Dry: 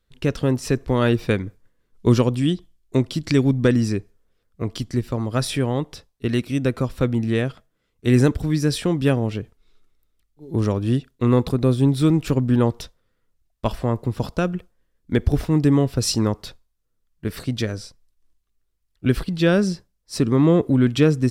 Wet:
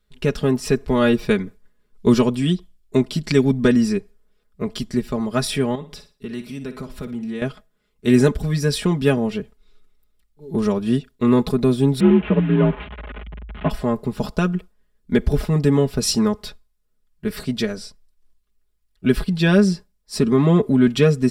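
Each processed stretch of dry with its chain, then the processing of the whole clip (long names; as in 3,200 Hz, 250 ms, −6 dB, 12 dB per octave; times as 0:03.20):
0:05.75–0:07.42: downward compressor 2 to 1, threshold −36 dBFS + flutter between parallel walls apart 10 metres, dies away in 0.32 s
0:12.00–0:13.70: linear delta modulator 16 kbit/s, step −29.5 dBFS + frequency shifter +45 Hz
whole clip: notch filter 6,300 Hz, Q 14; comb filter 4.8 ms, depth 82%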